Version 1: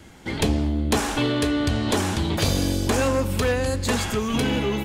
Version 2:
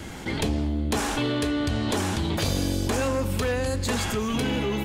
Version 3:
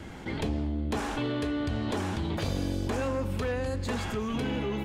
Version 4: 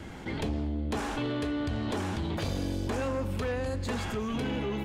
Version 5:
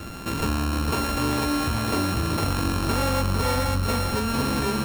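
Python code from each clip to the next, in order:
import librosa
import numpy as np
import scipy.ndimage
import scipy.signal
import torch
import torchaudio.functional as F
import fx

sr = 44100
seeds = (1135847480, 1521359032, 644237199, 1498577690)

y1 = fx.env_flatten(x, sr, amount_pct=50)
y1 = y1 * librosa.db_to_amplitude(-5.5)
y2 = fx.high_shelf(y1, sr, hz=4400.0, db=-11.5)
y2 = y2 * librosa.db_to_amplitude(-4.5)
y3 = 10.0 ** (-22.5 / 20.0) * np.tanh(y2 / 10.0 ** (-22.5 / 20.0))
y4 = np.r_[np.sort(y3[:len(y3) // 32 * 32].reshape(-1, 32), axis=1).ravel(), y3[len(y3) // 32 * 32:]]
y4 = y4 + 10.0 ** (-6.0 / 20.0) * np.pad(y4, (int(453 * sr / 1000.0), 0))[:len(y4)]
y4 = y4 * librosa.db_to_amplitude(6.5)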